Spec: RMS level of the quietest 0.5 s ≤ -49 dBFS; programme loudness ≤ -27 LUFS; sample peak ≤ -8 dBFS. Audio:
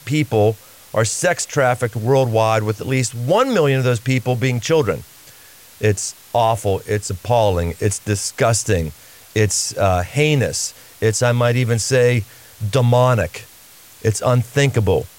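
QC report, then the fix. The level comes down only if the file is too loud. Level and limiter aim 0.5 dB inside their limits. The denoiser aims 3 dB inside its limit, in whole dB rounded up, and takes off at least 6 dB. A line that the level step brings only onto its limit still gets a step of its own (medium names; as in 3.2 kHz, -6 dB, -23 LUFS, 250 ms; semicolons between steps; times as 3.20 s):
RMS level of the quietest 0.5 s -44 dBFS: fail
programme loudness -18.0 LUFS: fail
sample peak -5.5 dBFS: fail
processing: trim -9.5 dB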